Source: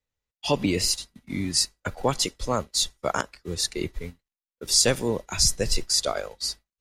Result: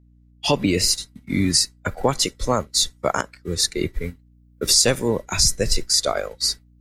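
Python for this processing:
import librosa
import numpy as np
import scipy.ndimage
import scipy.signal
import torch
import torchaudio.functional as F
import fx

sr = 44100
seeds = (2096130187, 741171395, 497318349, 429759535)

y = fx.recorder_agc(x, sr, target_db=-10.0, rise_db_per_s=8.0, max_gain_db=30)
y = fx.noise_reduce_blind(y, sr, reduce_db=7)
y = fx.add_hum(y, sr, base_hz=60, snr_db=31)
y = y * librosa.db_to_amplitude(3.0)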